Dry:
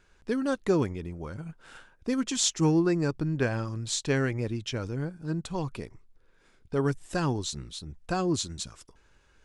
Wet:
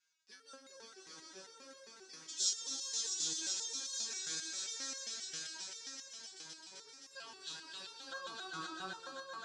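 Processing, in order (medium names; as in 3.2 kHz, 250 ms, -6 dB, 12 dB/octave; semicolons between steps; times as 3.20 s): band-pass sweep 5.4 kHz -> 690 Hz, 6.86–8.92 s; echo with a slow build-up 130 ms, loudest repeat 5, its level -4.5 dB; resonator arpeggio 7.5 Hz 160–540 Hz; trim +9 dB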